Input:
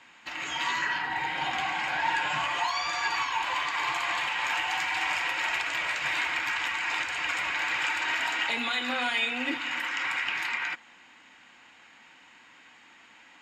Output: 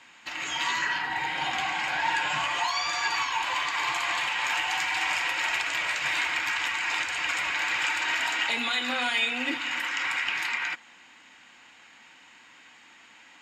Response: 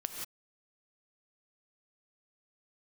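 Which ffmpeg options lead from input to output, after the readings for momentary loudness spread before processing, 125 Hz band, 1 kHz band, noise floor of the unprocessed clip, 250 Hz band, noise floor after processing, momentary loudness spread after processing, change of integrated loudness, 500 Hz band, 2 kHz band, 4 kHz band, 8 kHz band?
3 LU, no reading, +0.5 dB, -55 dBFS, 0.0 dB, -54 dBFS, 3 LU, +1.5 dB, 0.0 dB, +1.5 dB, +2.5 dB, +5.0 dB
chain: -af "equalizer=f=8500:w=0.38:g=5"

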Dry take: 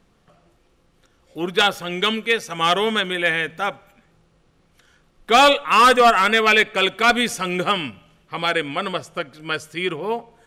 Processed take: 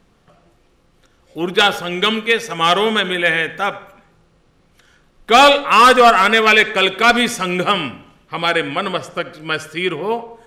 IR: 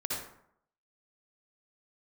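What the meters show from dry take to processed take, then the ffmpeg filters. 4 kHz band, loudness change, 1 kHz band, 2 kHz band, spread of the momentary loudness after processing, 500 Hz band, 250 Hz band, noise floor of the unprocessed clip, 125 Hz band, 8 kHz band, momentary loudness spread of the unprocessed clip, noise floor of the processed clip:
+4.0 dB, +4.0 dB, +4.0 dB, +4.0 dB, 14 LU, +4.0 dB, +4.0 dB, -61 dBFS, +4.0 dB, +3.0 dB, 14 LU, -57 dBFS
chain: -filter_complex "[0:a]asplit=2[s0][s1];[1:a]atrim=start_sample=2205,lowpass=7200[s2];[s1][s2]afir=irnorm=-1:irlink=0,volume=0.15[s3];[s0][s3]amix=inputs=2:normalize=0,volume=1.41"

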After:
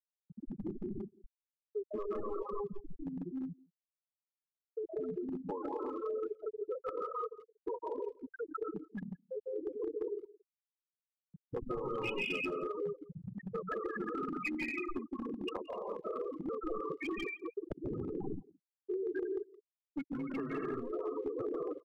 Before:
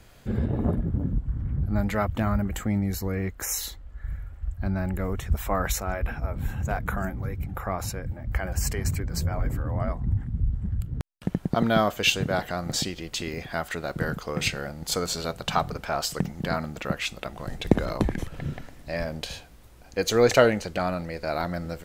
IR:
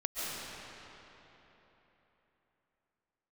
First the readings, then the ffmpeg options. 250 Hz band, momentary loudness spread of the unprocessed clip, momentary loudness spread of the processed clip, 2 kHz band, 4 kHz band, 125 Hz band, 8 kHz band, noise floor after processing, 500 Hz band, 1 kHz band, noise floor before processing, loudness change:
-11.0 dB, 11 LU, 8 LU, -12.5 dB, -21.0 dB, -23.5 dB, under -35 dB, under -85 dBFS, -9.0 dB, -13.0 dB, -48 dBFS, -12.0 dB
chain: -filter_complex "[0:a]highshelf=f=2500:g=-5.5,agate=range=0.0224:threshold=0.00708:ratio=3:detection=peak,bandreject=f=60:t=h:w=6,bandreject=f=120:t=h:w=6,bandreject=f=180:t=h:w=6,bandreject=f=240:t=h:w=6,highpass=f=380:t=q:w=0.5412,highpass=f=380:t=q:w=1.307,lowpass=f=3400:t=q:w=0.5176,lowpass=f=3400:t=q:w=0.7071,lowpass=f=3400:t=q:w=1.932,afreqshift=-210,aemphasis=mode=production:type=50kf[s0];[1:a]atrim=start_sample=2205,afade=t=out:st=0.42:d=0.01,atrim=end_sample=18963[s1];[s0][s1]afir=irnorm=-1:irlink=0,afftfilt=real='re*gte(hypot(re,im),0.126)':imag='im*gte(hypot(re,im),0.126)':win_size=1024:overlap=0.75,acompressor=threshold=0.0251:ratio=8,asplit=2[s2][s3];[s3]adelay=170,highpass=300,lowpass=3400,asoftclip=type=hard:threshold=0.0266,volume=0.0562[s4];[s2][s4]amix=inputs=2:normalize=0,acrossover=split=230|2500[s5][s6][s7];[s5]acompressor=threshold=0.00398:ratio=4[s8];[s6]acompressor=threshold=0.00398:ratio=4[s9];[s7]acompressor=threshold=0.00398:ratio=4[s10];[s8][s9][s10]amix=inputs=3:normalize=0,aeval=exprs='clip(val(0),-1,0.0112)':c=same,aecho=1:1:2.4:0.38,volume=2.11"

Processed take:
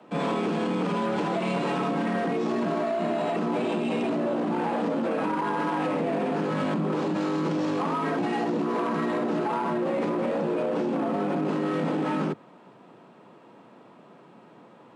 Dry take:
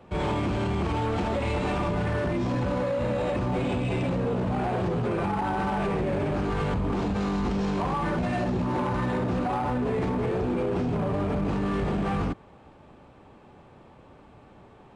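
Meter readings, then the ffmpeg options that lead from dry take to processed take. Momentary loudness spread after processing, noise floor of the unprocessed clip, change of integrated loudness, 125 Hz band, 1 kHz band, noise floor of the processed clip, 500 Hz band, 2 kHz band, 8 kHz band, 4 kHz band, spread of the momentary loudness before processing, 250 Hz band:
0 LU, -52 dBFS, +0.5 dB, -7.0 dB, +1.0 dB, -52 dBFS, +1.5 dB, +0.5 dB, no reading, +1.0 dB, 0 LU, +1.5 dB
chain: -af "afreqshift=110"

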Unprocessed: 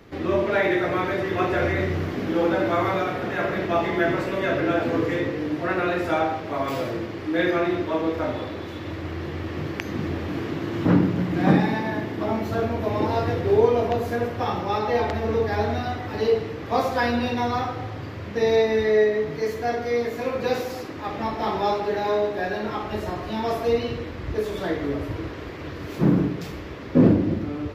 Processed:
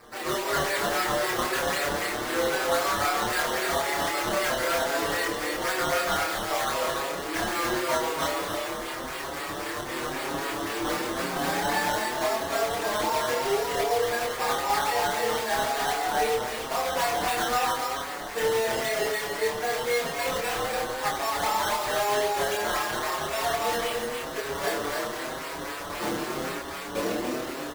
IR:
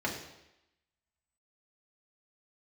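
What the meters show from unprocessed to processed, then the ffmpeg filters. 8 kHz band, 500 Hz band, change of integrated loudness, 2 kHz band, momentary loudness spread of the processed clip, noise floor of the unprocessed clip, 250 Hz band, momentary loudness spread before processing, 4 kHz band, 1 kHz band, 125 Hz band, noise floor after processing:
no reading, -5.0 dB, -3.0 dB, +1.5 dB, 7 LU, -34 dBFS, -11.5 dB, 11 LU, +6.0 dB, +1.0 dB, -15.0 dB, -35 dBFS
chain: -filter_complex "[0:a]highpass=730,acompressor=threshold=0.0355:ratio=6,acrusher=samples=13:mix=1:aa=0.000001:lfo=1:lforange=13:lforate=3.8,aeval=exprs='0.0501*(abs(mod(val(0)/0.0501+3,4)-2)-1)':c=same,asplit=2[s0][s1];[s1]adelay=27,volume=0.794[s2];[s0][s2]amix=inputs=2:normalize=0,aecho=1:1:288:0.631,asplit=2[s3][s4];[s4]adelay=6.3,afreqshift=0.92[s5];[s3][s5]amix=inputs=2:normalize=1,volume=2.11"

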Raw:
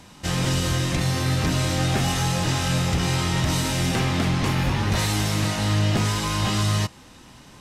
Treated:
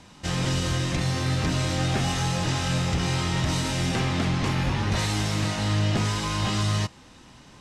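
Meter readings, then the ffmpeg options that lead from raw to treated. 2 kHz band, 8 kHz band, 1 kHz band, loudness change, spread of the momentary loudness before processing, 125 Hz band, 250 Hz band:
-2.5 dB, -4.0 dB, -2.5 dB, -2.5 dB, 1 LU, -2.5 dB, -2.5 dB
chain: -af "lowpass=8500,volume=0.75"

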